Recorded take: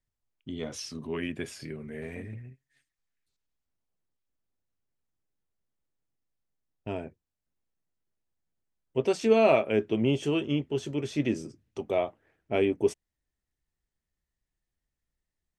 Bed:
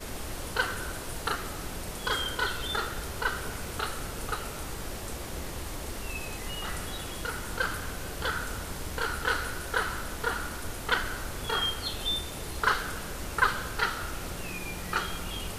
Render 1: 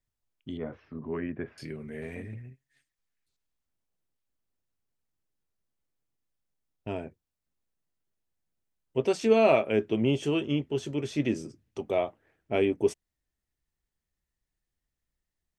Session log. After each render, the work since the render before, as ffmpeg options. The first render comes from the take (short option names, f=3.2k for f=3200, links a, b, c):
-filter_complex "[0:a]asettb=1/sr,asplit=3[a][b][c];[a]atrim=end=0.574[d];[b]atrim=start=0.57:end=1.58,asetpts=PTS-STARTPTS,afade=t=in:d=0.004:c=qsin,afade=t=out:st=1.006:d=0.004:c=qsin,lowpass=f=1.8k:w=0.5412,lowpass=f=1.8k:w=1.3066[e];[c]atrim=start=1.576[f];[d][e]acrossfade=d=0.004:c1=hsin:c2=qsin[g];[g][f]acrossfade=d=0.004:c1=qsin:c2=hsin"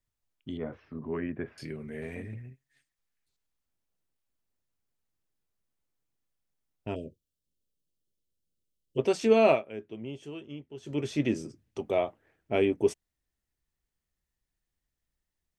-filter_complex "[0:a]asplit=3[a][b][c];[a]afade=t=out:st=6.94:d=0.02[d];[b]asuperstop=centerf=1300:order=20:qfactor=0.6,afade=t=in:st=6.94:d=0.02,afade=t=out:st=8.97:d=0.02[e];[c]afade=t=in:st=8.97:d=0.02[f];[d][e][f]amix=inputs=3:normalize=0,asplit=3[g][h][i];[g]atrim=end=9.65,asetpts=PTS-STARTPTS,afade=t=out:st=9.51:d=0.14:c=qua:silence=0.199526[j];[h]atrim=start=9.65:end=10.79,asetpts=PTS-STARTPTS,volume=-14dB[k];[i]atrim=start=10.79,asetpts=PTS-STARTPTS,afade=t=in:d=0.14:c=qua:silence=0.199526[l];[j][k][l]concat=n=3:v=0:a=1"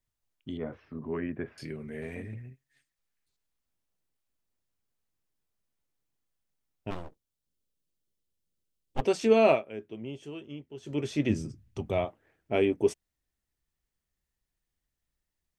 -filter_complex "[0:a]asplit=3[a][b][c];[a]afade=t=out:st=6.9:d=0.02[d];[b]aeval=exprs='abs(val(0))':c=same,afade=t=in:st=6.9:d=0.02,afade=t=out:st=9:d=0.02[e];[c]afade=t=in:st=9:d=0.02[f];[d][e][f]amix=inputs=3:normalize=0,asplit=3[g][h][i];[g]afade=t=out:st=11.29:d=0.02[j];[h]asubboost=boost=5:cutoff=160,afade=t=in:st=11.29:d=0.02,afade=t=out:st=12.04:d=0.02[k];[i]afade=t=in:st=12.04:d=0.02[l];[j][k][l]amix=inputs=3:normalize=0"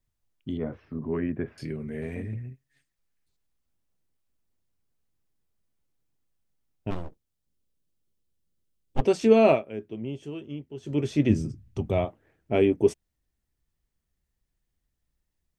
-af "lowshelf=f=420:g=7.5"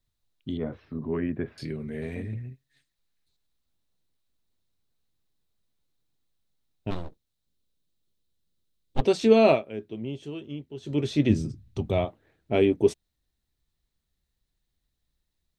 -af "equalizer=f=3.9k:t=o:w=0.4:g=10.5"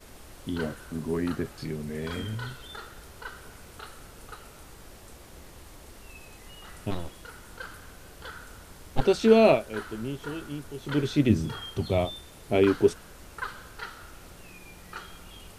-filter_complex "[1:a]volume=-11dB[a];[0:a][a]amix=inputs=2:normalize=0"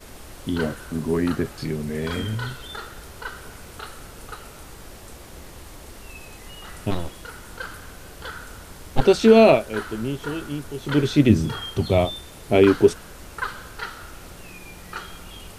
-af "volume=6.5dB,alimiter=limit=-3dB:level=0:latency=1"